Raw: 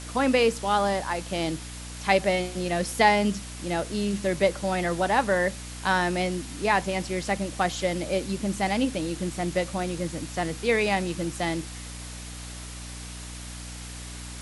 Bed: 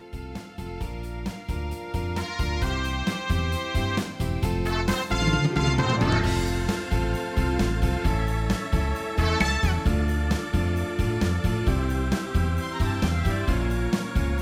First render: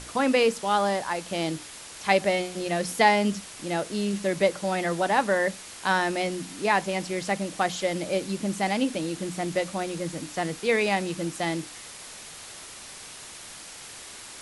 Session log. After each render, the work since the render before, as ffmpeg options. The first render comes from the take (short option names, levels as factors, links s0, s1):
-af "bandreject=f=60:t=h:w=6,bandreject=f=120:t=h:w=6,bandreject=f=180:t=h:w=6,bandreject=f=240:t=h:w=6,bandreject=f=300:t=h:w=6"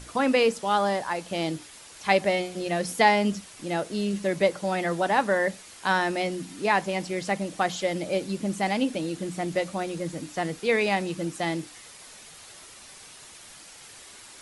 -af "afftdn=nr=6:nf=-43"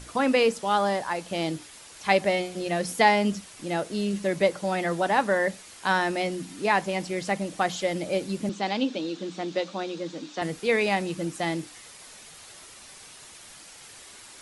-filter_complex "[0:a]asettb=1/sr,asplit=3[s0][s1][s2];[s0]atrim=end=8.494[s3];[s1]atrim=start=8.49:end=10.42,asetpts=PTS-STARTPTS,afade=t=in:d=0.004:c=qsin,afade=t=out:st=1.926:d=0.004:c=qsin,highpass=f=210:w=0.5412,highpass=f=210:w=1.3066,equalizer=f=670:t=q:w=4:g=-4,equalizer=f=2000:t=q:w=4:g=-5,equalizer=f=3700:t=q:w=4:g=6,lowpass=f=6300:w=0.5412,lowpass=f=6300:w=1.3066[s4];[s2]atrim=start=10.416[s5];[s3][s4]acrossfade=d=0.004:c1=hsin:c2=qsin[s6];[s6][s5]acrossfade=d=0.004:c1=qsin:c2=hsin"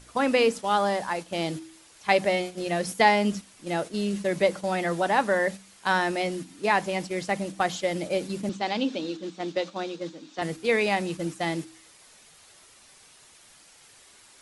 -af "agate=range=0.447:threshold=0.0224:ratio=16:detection=peak,bandreject=f=64.55:t=h:w=4,bandreject=f=129.1:t=h:w=4,bandreject=f=193.65:t=h:w=4,bandreject=f=258.2:t=h:w=4,bandreject=f=322.75:t=h:w=4"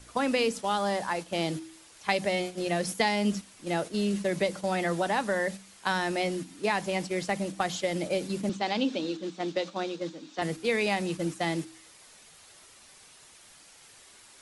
-filter_complex "[0:a]acrossover=split=220|3000[s0][s1][s2];[s1]acompressor=threshold=0.0562:ratio=6[s3];[s0][s3][s2]amix=inputs=3:normalize=0"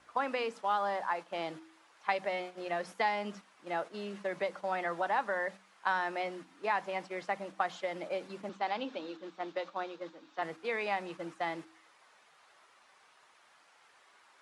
-af "bandpass=f=1100:t=q:w=1.2:csg=0"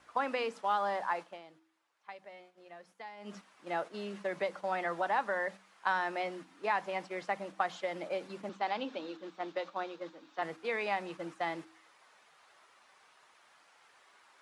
-filter_complex "[0:a]asplit=3[s0][s1][s2];[s0]atrim=end=1.44,asetpts=PTS-STARTPTS,afade=t=out:st=1.25:d=0.19:c=qua:silence=0.149624[s3];[s1]atrim=start=1.44:end=3.15,asetpts=PTS-STARTPTS,volume=0.15[s4];[s2]atrim=start=3.15,asetpts=PTS-STARTPTS,afade=t=in:d=0.19:c=qua:silence=0.149624[s5];[s3][s4][s5]concat=n=3:v=0:a=1"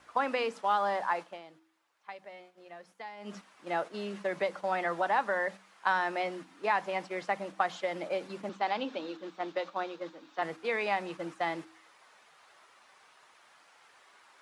-af "volume=1.41"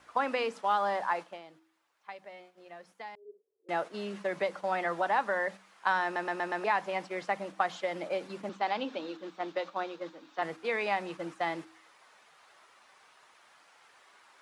-filter_complex "[0:a]asettb=1/sr,asplit=3[s0][s1][s2];[s0]atrim=end=3.154[s3];[s1]atrim=start=3.15:end=3.69,asetpts=PTS-STARTPTS,afade=t=in:d=0.004:c=qsin,afade=t=out:st=0.536:d=0.004:c=qsin,asuperpass=centerf=420:order=4:qfactor=6.8[s4];[s2]atrim=start=3.686[s5];[s3][s4]acrossfade=d=0.004:c1=hsin:c2=qsin[s6];[s6][s5]acrossfade=d=0.004:c1=qsin:c2=hsin,asplit=6[s7][s8][s9][s10][s11][s12];[s7]atrim=end=6.162[s13];[s8]atrim=start=6.038:end=6.162[s14];[s9]atrim=start=6.038:end=6.162[s15];[s10]atrim=start=6.038:end=6.162[s16];[s11]atrim=start=6.038:end=6.162[s17];[s12]atrim=start=6.638[s18];[s13][s14]acrossfade=d=0.004:c1=hsin:c2=hsin[s19];[s19][s15]acrossfade=d=0.004:c1=hsin:c2=hsin[s20];[s20][s16]acrossfade=d=0.004:c1=hsin:c2=hsin[s21];[s21][s17]acrossfade=d=0.004:c1=hsin:c2=hsin[s22];[s22][s18]acrossfade=d=0.004:c1=hsin:c2=hsin"